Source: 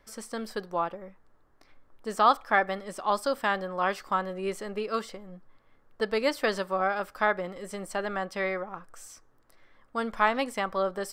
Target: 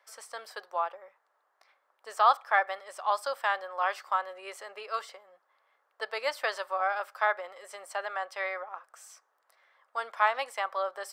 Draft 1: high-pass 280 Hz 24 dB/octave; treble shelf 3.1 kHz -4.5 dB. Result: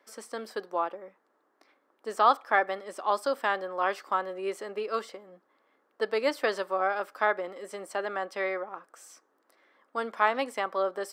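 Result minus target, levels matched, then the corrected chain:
250 Hz band +19.5 dB
high-pass 620 Hz 24 dB/octave; treble shelf 3.1 kHz -4.5 dB

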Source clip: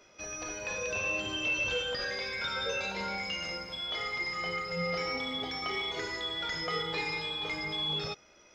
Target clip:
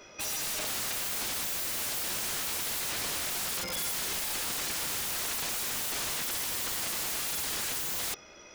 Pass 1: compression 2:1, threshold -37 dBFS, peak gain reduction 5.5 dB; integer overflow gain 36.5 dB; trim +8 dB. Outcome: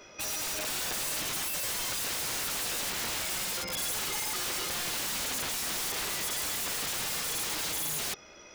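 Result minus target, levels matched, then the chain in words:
compression: peak gain reduction +5.5 dB
integer overflow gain 36.5 dB; trim +8 dB

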